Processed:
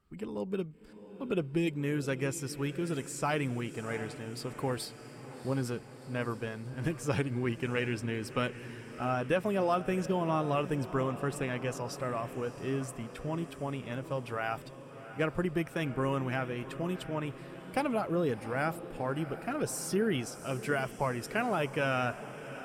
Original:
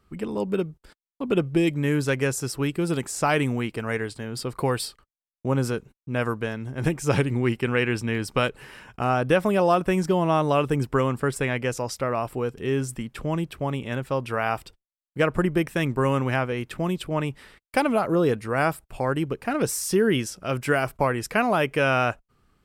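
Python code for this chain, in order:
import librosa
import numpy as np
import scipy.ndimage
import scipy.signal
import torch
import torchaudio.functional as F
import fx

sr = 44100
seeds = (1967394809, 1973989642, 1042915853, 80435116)

y = fx.spec_quant(x, sr, step_db=15)
y = fx.echo_diffused(y, sr, ms=702, feedback_pct=63, wet_db=-13.5)
y = y * librosa.db_to_amplitude(-8.5)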